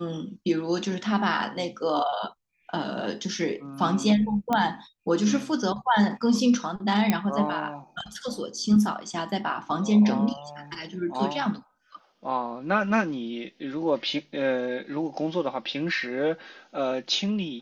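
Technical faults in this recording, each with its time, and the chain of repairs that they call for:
4.53 pop -12 dBFS
7.1 pop -8 dBFS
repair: de-click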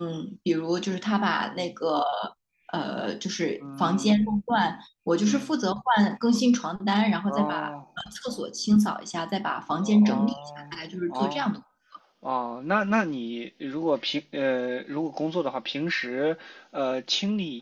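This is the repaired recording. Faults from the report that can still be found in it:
none

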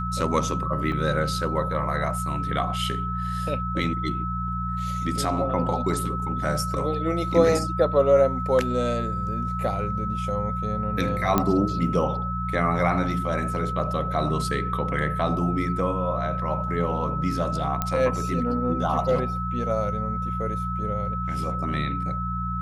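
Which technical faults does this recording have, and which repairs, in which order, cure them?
hum 60 Hz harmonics 3 -30 dBFS
tone 1300 Hz -29 dBFS
0.92 gap 2.5 ms
11.38 pop -7 dBFS
17.82 pop -10 dBFS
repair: de-click; de-hum 60 Hz, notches 3; notch 1300 Hz, Q 30; interpolate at 0.92, 2.5 ms

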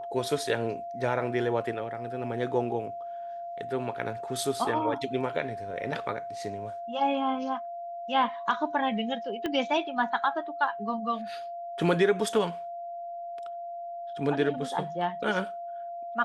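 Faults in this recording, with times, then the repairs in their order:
tone 690 Hz -35 dBFS
9.46 pop -18 dBFS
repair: de-click; notch 690 Hz, Q 30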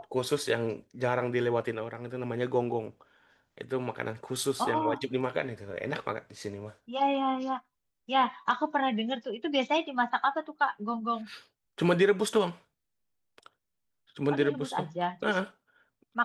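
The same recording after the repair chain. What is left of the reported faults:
9.46 pop

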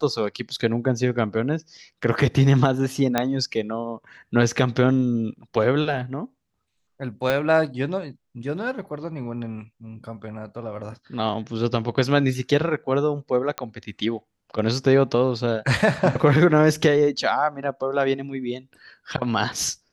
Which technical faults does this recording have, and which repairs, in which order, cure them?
3.18 pop -6 dBFS
7.3 pop -9 dBFS
13.58 pop -11 dBFS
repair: de-click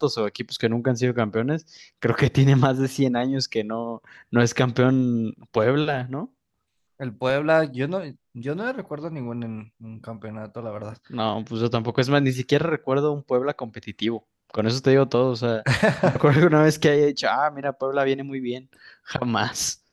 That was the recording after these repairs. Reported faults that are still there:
7.3 pop

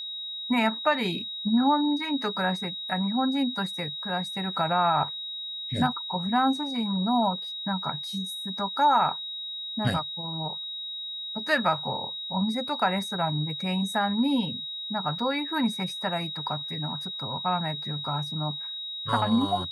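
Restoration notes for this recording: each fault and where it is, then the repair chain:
tone 3800 Hz -33 dBFS
15.19 gap 4 ms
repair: notch 3800 Hz, Q 30; interpolate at 15.19, 4 ms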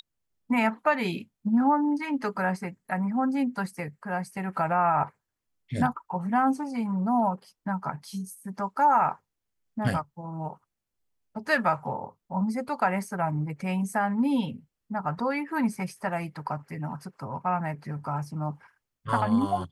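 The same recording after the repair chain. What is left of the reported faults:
none

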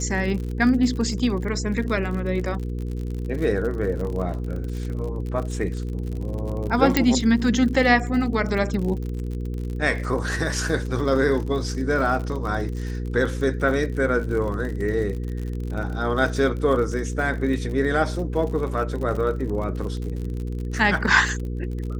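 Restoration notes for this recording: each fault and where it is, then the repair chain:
crackle 51/s -30 dBFS
hum 60 Hz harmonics 8 -28 dBFS
6.97 pop -3 dBFS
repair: de-click; de-hum 60 Hz, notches 8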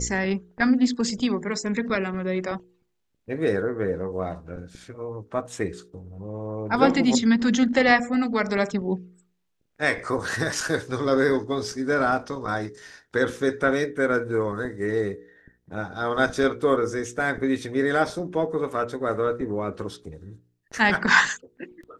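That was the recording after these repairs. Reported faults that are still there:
none

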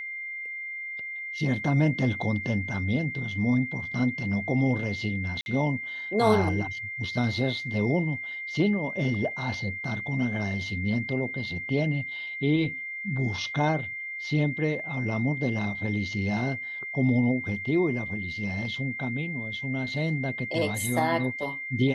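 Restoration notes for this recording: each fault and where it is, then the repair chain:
tone 2100 Hz -33 dBFS
5.41–5.46 gap 51 ms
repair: notch 2100 Hz, Q 30; interpolate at 5.41, 51 ms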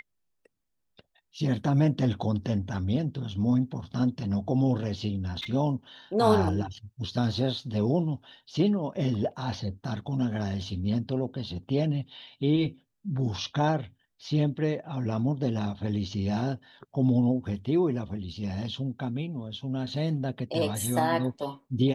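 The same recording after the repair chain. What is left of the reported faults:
tone 2100 Hz

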